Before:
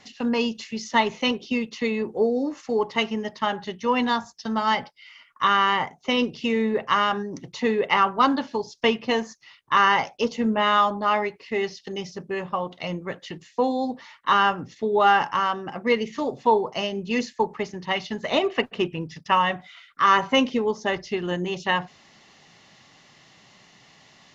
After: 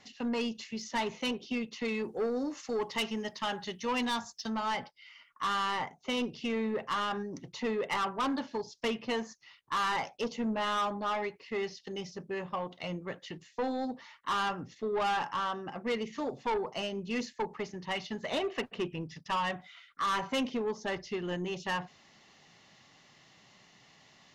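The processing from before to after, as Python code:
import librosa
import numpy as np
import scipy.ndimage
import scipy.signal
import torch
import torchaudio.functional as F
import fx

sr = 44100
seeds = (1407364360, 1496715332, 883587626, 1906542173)

y = fx.high_shelf(x, sr, hz=2800.0, db=9.0, at=(1.88, 4.5))
y = 10.0 ** (-20.0 / 20.0) * np.tanh(y / 10.0 ** (-20.0 / 20.0))
y = y * 10.0 ** (-6.5 / 20.0)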